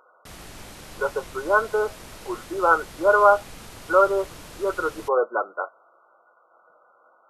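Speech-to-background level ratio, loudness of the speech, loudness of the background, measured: 19.5 dB, -22.5 LUFS, -42.0 LUFS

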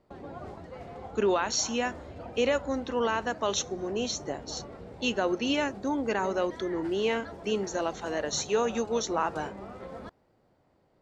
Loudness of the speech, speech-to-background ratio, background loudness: -30.0 LUFS, 13.5 dB, -43.5 LUFS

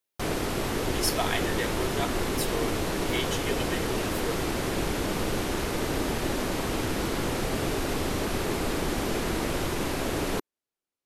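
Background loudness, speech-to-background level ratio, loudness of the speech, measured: -29.0 LUFS, -4.5 dB, -33.5 LUFS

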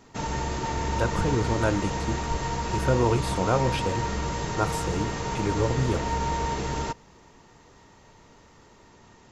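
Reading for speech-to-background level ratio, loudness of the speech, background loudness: 1.0 dB, -28.5 LUFS, -29.5 LUFS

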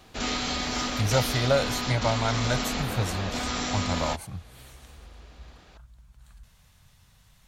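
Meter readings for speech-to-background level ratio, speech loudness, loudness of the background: 0.5 dB, -29.0 LUFS, -29.5 LUFS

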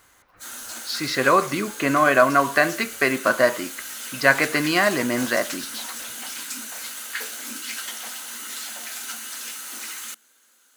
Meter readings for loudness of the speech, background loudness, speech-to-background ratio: -20.5 LUFS, -32.0 LUFS, 11.5 dB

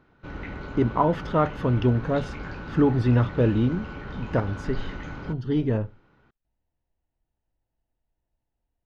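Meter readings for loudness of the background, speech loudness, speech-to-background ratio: -37.5 LUFS, -25.0 LUFS, 12.5 dB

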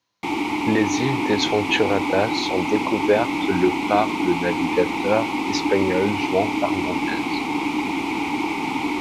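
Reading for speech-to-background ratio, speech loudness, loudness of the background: 0.5 dB, -23.5 LUFS, -24.0 LUFS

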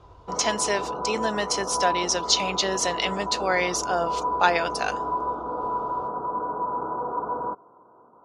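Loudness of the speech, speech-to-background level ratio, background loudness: -25.5 LUFS, 4.0 dB, -29.5 LUFS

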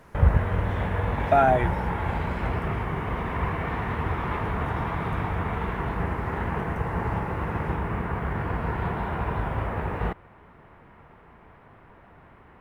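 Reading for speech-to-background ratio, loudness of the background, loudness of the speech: 6.0 dB, -28.5 LUFS, -22.5 LUFS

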